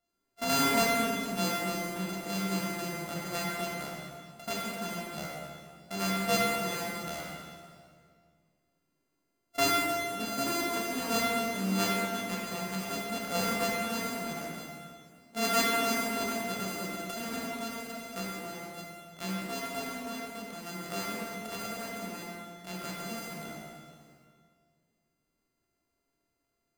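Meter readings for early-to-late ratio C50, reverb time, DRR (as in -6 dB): -1.5 dB, 2.0 s, -4.5 dB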